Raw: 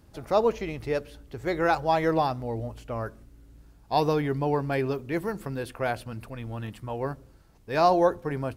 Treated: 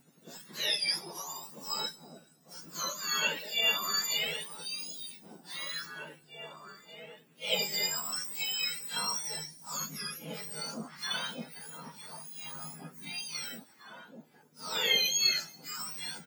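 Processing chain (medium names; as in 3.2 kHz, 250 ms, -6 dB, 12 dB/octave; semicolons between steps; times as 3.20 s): spectrum inverted on a logarithmic axis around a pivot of 1.5 kHz; echo from a far wall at 250 m, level -7 dB; plain phase-vocoder stretch 1.9×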